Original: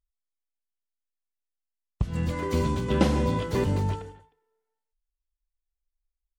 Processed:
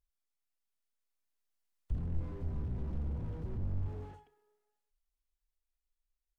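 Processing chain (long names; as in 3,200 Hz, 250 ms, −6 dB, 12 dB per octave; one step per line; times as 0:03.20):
source passing by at 0:02.50, 23 m/s, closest 27 metres
slew-rate limiting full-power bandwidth 0.9 Hz
level +6.5 dB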